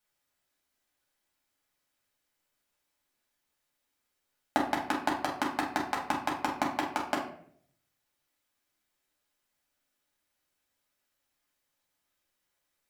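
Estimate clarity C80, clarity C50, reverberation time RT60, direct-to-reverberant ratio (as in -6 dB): 10.5 dB, 6.0 dB, 0.60 s, -4.0 dB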